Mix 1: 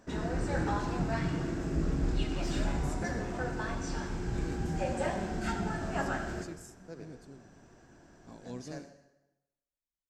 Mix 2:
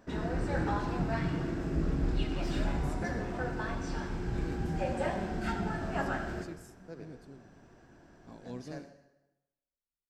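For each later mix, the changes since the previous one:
master: add parametric band 7,000 Hz −8 dB 0.77 octaves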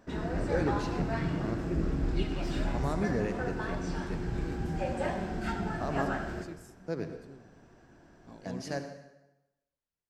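first voice +11.5 dB

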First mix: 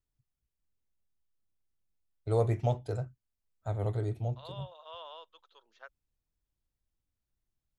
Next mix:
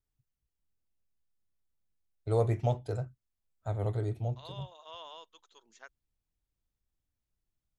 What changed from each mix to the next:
second voice: remove loudspeaker in its box 460–4,200 Hz, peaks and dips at 540 Hz +7 dB, 1,300 Hz +4 dB, 2,100 Hz −5 dB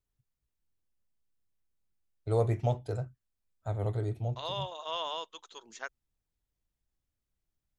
second voice +11.5 dB

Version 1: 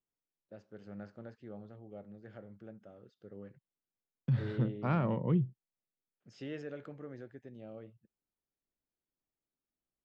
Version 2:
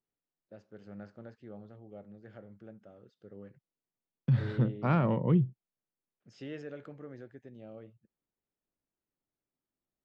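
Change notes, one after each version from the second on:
second voice +4.0 dB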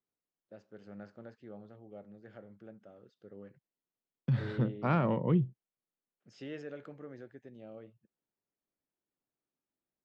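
master: add low-shelf EQ 89 Hz −11 dB

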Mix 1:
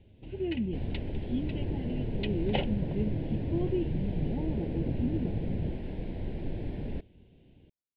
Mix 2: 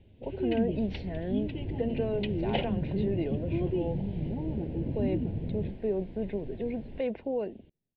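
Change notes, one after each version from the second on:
speech: unmuted
second sound −8.5 dB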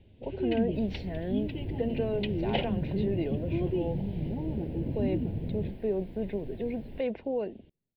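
master: remove high-frequency loss of the air 85 metres

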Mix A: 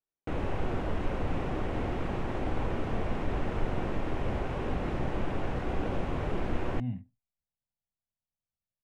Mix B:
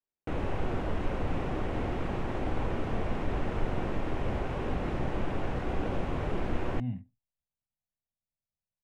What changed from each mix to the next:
nothing changed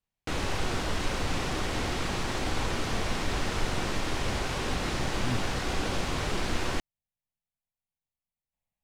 speech: entry −1.55 s
master: remove drawn EQ curve 630 Hz 0 dB, 1,200 Hz −6 dB, 2,700 Hz −10 dB, 4,500 Hz −22 dB

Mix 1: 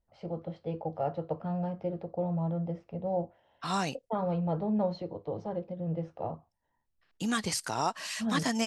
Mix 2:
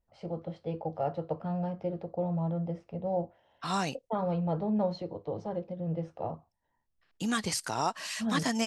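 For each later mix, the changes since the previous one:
first voice: remove high-frequency loss of the air 64 metres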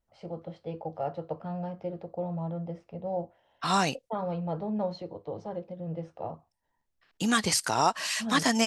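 second voice +6.5 dB
master: add low-shelf EQ 370 Hz −3.5 dB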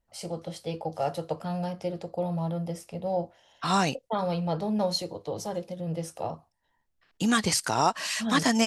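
first voice: remove head-to-tape spacing loss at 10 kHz 43 dB
master: add low-shelf EQ 370 Hz +3.5 dB

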